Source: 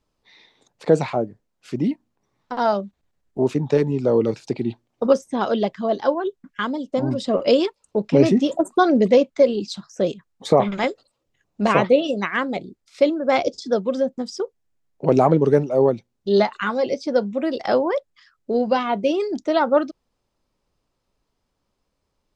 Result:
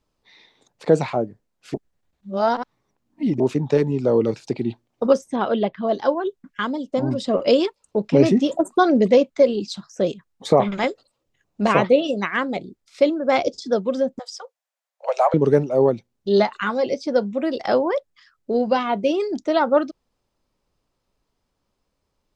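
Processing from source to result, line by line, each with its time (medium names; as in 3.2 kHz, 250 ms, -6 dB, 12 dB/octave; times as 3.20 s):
1.74–3.40 s: reverse
5.36–5.87 s: low-pass 3.6 kHz 24 dB/octave
14.19–15.34 s: steep high-pass 530 Hz 72 dB/octave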